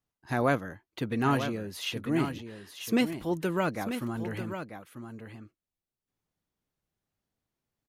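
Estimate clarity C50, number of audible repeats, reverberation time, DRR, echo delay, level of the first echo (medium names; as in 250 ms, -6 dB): no reverb, 1, no reverb, no reverb, 942 ms, -9.0 dB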